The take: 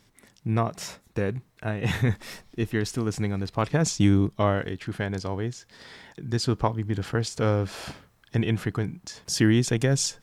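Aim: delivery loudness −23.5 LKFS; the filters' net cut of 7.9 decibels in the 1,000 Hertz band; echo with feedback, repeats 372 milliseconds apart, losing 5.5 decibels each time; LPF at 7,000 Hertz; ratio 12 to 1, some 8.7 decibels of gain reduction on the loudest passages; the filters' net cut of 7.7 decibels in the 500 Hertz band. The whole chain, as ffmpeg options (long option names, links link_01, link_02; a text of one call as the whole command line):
ffmpeg -i in.wav -af "lowpass=7000,equalizer=frequency=500:width_type=o:gain=-8.5,equalizer=frequency=1000:width_type=o:gain=-7.5,acompressor=threshold=-26dB:ratio=12,aecho=1:1:372|744|1116|1488|1860|2232|2604:0.531|0.281|0.149|0.079|0.0419|0.0222|0.0118,volume=9dB" out.wav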